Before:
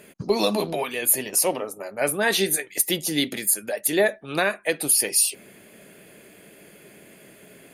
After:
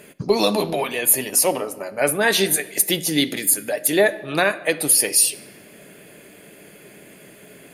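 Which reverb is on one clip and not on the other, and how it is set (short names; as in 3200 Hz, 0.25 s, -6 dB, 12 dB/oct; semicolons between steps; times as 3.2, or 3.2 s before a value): shoebox room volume 1900 m³, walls mixed, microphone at 0.36 m; gain +3.5 dB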